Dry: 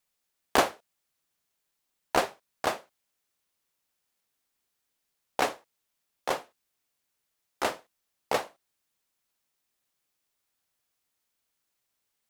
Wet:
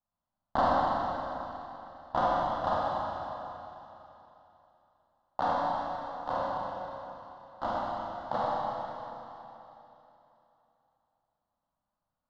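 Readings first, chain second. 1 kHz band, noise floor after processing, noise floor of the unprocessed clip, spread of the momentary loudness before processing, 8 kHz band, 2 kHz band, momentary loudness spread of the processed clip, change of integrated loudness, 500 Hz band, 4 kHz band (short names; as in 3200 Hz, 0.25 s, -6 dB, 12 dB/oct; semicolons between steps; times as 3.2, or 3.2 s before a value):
+4.5 dB, under -85 dBFS, -81 dBFS, 14 LU, under -20 dB, -6.5 dB, 19 LU, -1.5 dB, 0.0 dB, -9.0 dB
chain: median filter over 25 samples; LPF 4000 Hz 24 dB/oct; fixed phaser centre 1000 Hz, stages 4; Schroeder reverb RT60 3.2 s, combs from 31 ms, DRR -7.5 dB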